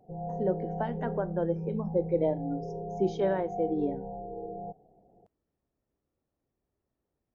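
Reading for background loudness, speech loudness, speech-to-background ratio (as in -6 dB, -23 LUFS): -37.5 LUFS, -32.0 LUFS, 5.5 dB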